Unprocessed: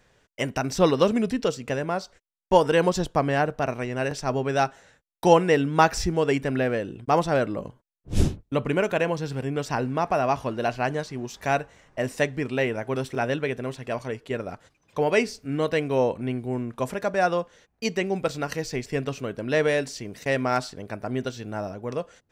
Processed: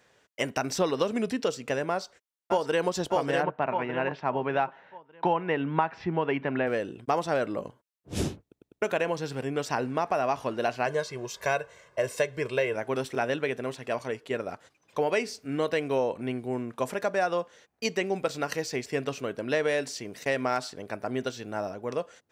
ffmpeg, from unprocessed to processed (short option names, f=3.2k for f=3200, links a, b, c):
-filter_complex "[0:a]asplit=2[a][b];[b]afade=t=in:st=1.9:d=0.01,afade=t=out:st=2.89:d=0.01,aecho=0:1:600|1200|1800|2400:0.630957|0.220835|0.0772923|0.0270523[c];[a][c]amix=inputs=2:normalize=0,asplit=3[d][e][f];[d]afade=t=out:st=3.42:d=0.02[g];[e]highpass=110,equalizer=f=160:t=q:w=4:g=5,equalizer=f=470:t=q:w=4:g=-4,equalizer=f=940:t=q:w=4:g=7,lowpass=f=3k:w=0.5412,lowpass=f=3k:w=1.3066,afade=t=in:st=3.42:d=0.02,afade=t=out:st=6.66:d=0.02[h];[f]afade=t=in:st=6.66:d=0.02[i];[g][h][i]amix=inputs=3:normalize=0,asettb=1/sr,asplit=3[j][k][l];[j]atrim=end=10.864[m];[k]atrim=start=10.86:end=12.75,asetpts=PTS-STARTPTS,afade=t=in:d=0.004:c=qsin,afade=t=out:st=1.886:d=0.004:c=qsin,aecho=1:1:1.9:0.7,atrim=end_sample=83349[n];[l]atrim=start=12.746[o];[m][n]acrossfade=d=0.004:c1=hsin:c2=qsin[p];[p][o]acrossfade=d=0.004:c1=qsin:c2=hsin,asplit=5[q][r][s][t][u];[q]atrim=end=8.522[v];[r]atrim=start=8.418:end=8.522[w];[s]atrim=start=8.418:end=8.522[x];[t]atrim=start=8.418:end=8.522[y];[u]atrim=start=8.818[z];[v][w]acrossfade=d=0.004:c1=hsin:c2=hsin[aa];[aa][x]acrossfade=d=0.004:c1=hsin:c2=hsin[ab];[ab][y]acrossfade=d=0.004:c1=hsin:c2=hsin[ac];[ac][z]acrossfade=d=0.004:c1=hsin:c2=hsin,highpass=81,bass=f=250:g=-7,treble=f=4k:g=0,acompressor=threshold=-22dB:ratio=6"